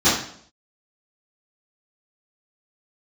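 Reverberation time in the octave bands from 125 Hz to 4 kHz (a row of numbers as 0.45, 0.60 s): 0.65, 0.65, 0.65, 0.55, 0.55, 0.55 s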